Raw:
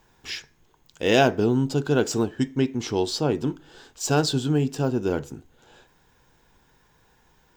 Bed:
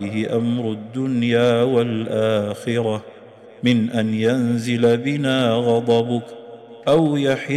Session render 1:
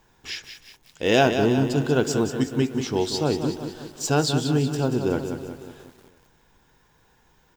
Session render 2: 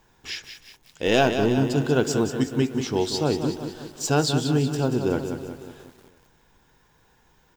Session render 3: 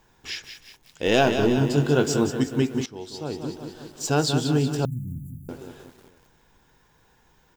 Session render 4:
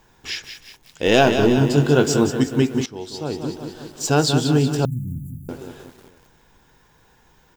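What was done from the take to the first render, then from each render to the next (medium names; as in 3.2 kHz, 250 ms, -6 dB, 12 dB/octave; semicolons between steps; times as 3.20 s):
feedback delay 335 ms, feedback 44%, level -21.5 dB; bit-crushed delay 185 ms, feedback 55%, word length 8-bit, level -8 dB
1.07–1.57 s: partial rectifier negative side -3 dB
1.25–2.31 s: doubling 21 ms -6 dB; 2.86–4.33 s: fade in, from -18 dB; 4.85–5.49 s: inverse Chebyshev band-stop 430–5100 Hz, stop band 50 dB
trim +4.5 dB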